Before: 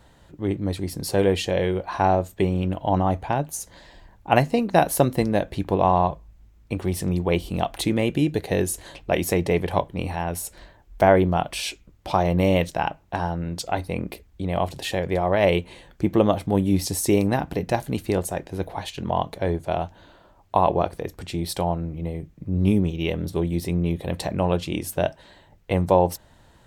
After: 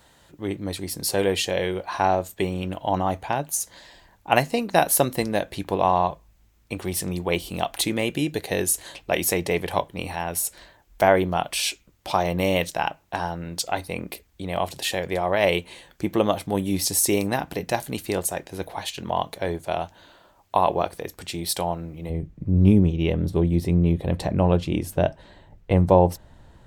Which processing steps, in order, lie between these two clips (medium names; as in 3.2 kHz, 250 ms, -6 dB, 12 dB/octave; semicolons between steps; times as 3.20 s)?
tilt EQ +2 dB/octave, from 22.09 s -1.5 dB/octave